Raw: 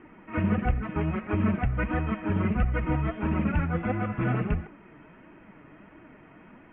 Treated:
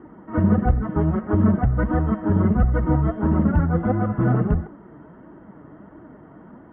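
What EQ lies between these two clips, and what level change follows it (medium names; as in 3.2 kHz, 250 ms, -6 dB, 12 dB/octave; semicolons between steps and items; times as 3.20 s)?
boxcar filter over 18 samples; high-pass 41 Hz; distance through air 110 m; +8.0 dB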